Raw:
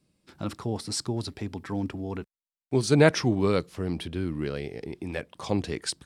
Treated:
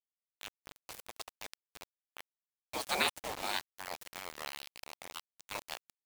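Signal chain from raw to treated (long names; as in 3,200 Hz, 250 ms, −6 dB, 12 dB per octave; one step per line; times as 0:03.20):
de-essing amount 35%
gate on every frequency bin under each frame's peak −25 dB weak
parametric band 450 Hz +8.5 dB 2.1 octaves
bit reduction 7 bits
level +3.5 dB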